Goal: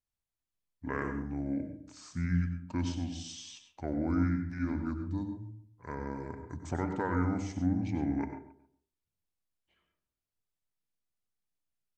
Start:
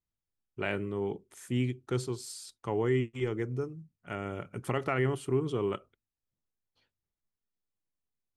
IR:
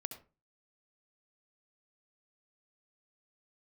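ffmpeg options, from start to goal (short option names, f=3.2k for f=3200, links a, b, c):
-filter_complex "[0:a]asplit=2[a][b];[b]adelay=96,lowpass=f=1.7k:p=1,volume=-14dB,asplit=2[c][d];[d]adelay=96,lowpass=f=1.7k:p=1,volume=0.33,asplit=2[e][f];[f]adelay=96,lowpass=f=1.7k:p=1,volume=0.33[g];[a][c][e][g]amix=inputs=4:normalize=0[h];[1:a]atrim=start_sample=2205,afade=t=out:st=0.31:d=0.01,atrim=end_sample=14112[i];[h][i]afir=irnorm=-1:irlink=0,asetrate=30782,aresample=44100"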